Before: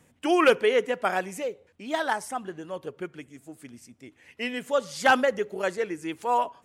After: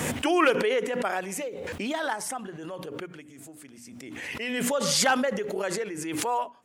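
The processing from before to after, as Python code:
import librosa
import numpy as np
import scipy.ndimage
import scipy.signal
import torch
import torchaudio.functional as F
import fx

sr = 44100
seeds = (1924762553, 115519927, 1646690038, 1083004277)

y = fx.highpass(x, sr, hz=140.0, slope=6)
y = fx.hum_notches(y, sr, base_hz=60, count=5)
y = fx.pre_swell(y, sr, db_per_s=25.0)
y = y * librosa.db_to_amplitude(-4.0)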